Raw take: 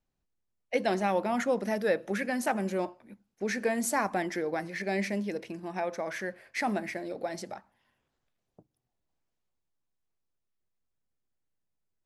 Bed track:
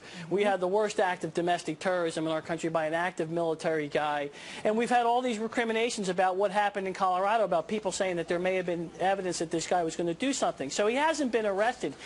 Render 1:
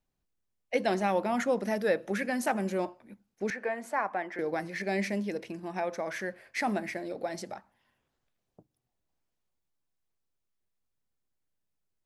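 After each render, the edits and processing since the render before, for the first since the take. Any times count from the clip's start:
0:03.50–0:04.39: three-way crossover with the lows and the highs turned down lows −14 dB, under 470 Hz, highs −19 dB, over 2,500 Hz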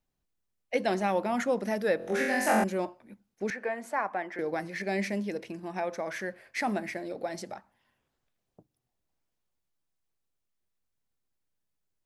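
0:01.97–0:02.64: flutter between parallel walls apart 3.9 metres, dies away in 0.86 s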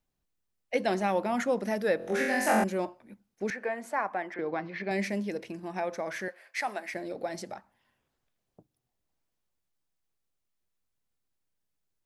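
0:04.34–0:04.91: loudspeaker in its box 110–3,900 Hz, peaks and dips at 550 Hz −3 dB, 1,100 Hz +5 dB, 1,800 Hz −3 dB
0:06.28–0:06.94: high-pass filter 600 Hz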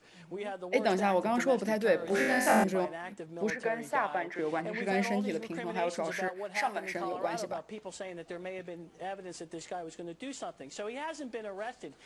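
mix in bed track −12 dB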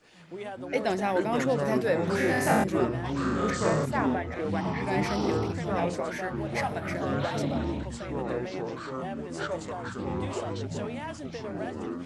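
delay with pitch and tempo change per echo 123 ms, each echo −6 semitones, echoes 3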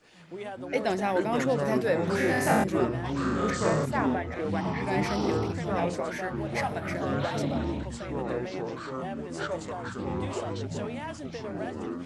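no processing that can be heard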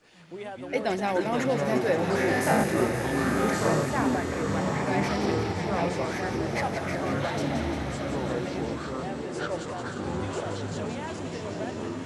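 delay with a high-pass on its return 175 ms, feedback 70%, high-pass 2,000 Hz, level −5.5 dB
slow-attack reverb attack 1,050 ms, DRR 5 dB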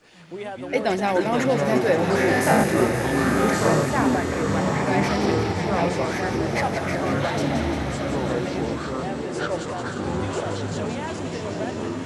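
level +5 dB

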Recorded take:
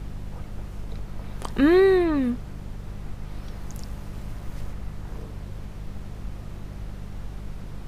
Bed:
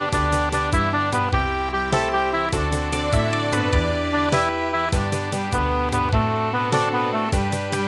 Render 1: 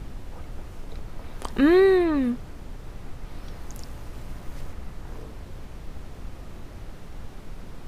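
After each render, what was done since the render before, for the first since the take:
hum removal 50 Hz, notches 4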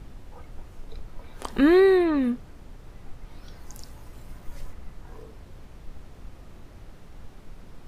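noise reduction from a noise print 6 dB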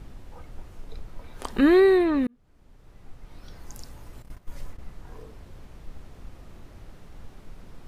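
0:02.27–0:03.61: fade in
0:04.22–0:04.81: noise gate −40 dBFS, range −12 dB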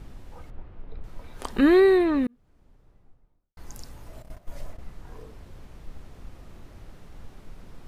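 0:00.50–0:01.04: high-frequency loss of the air 390 metres
0:02.14–0:03.57: fade out and dull
0:04.07–0:04.80: parametric band 640 Hz +12.5 dB 0.34 octaves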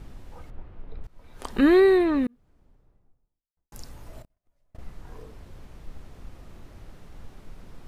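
0:01.07–0:01.56: fade in, from −19.5 dB
0:02.26–0:03.72: fade out and dull
0:04.22–0:04.75: gate with flip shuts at −39 dBFS, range −35 dB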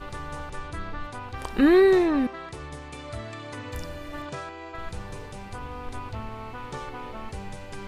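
mix in bed −16.5 dB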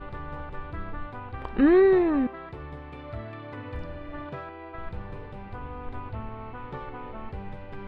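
high-frequency loss of the air 440 metres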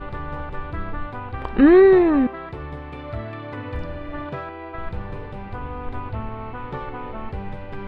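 level +6.5 dB

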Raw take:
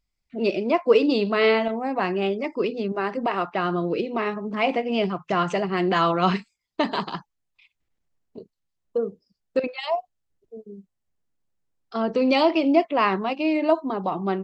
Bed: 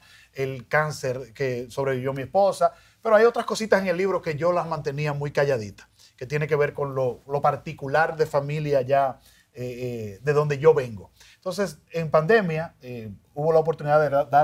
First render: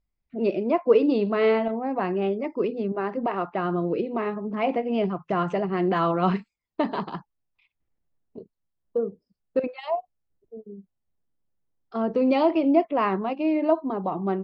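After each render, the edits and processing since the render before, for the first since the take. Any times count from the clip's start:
low-pass filter 1,000 Hz 6 dB per octave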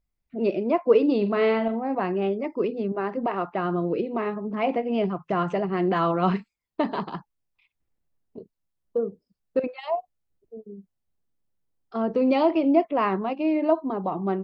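0:01.17–0:01.95: flutter between parallel walls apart 7.6 metres, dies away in 0.24 s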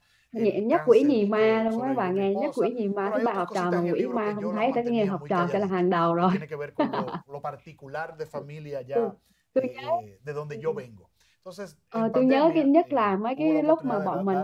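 mix in bed −12.5 dB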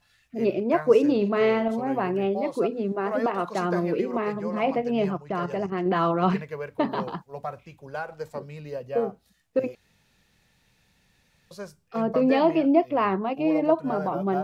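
0:05.17–0:05.86: output level in coarse steps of 9 dB
0:09.75–0:11.51: fill with room tone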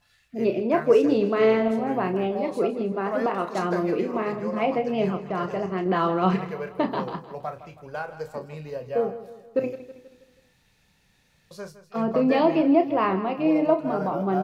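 double-tracking delay 32 ms −9 dB
repeating echo 161 ms, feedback 48%, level −14 dB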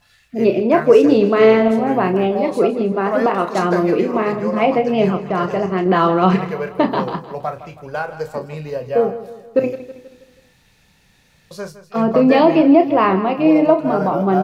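level +8.5 dB
brickwall limiter −1 dBFS, peak gain reduction 2 dB

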